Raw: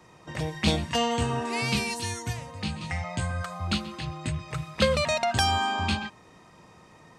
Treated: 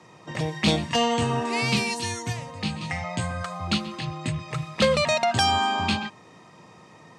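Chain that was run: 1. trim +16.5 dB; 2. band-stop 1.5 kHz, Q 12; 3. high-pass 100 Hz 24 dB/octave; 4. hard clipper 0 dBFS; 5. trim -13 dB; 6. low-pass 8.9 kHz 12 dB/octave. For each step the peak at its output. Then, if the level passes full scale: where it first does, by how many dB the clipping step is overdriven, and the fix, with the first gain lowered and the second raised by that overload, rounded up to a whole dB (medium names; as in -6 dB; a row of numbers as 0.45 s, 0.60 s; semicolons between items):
+7.0 dBFS, +7.0 dBFS, +9.5 dBFS, 0.0 dBFS, -13.0 dBFS, -12.0 dBFS; step 1, 9.5 dB; step 1 +6.5 dB, step 5 -3 dB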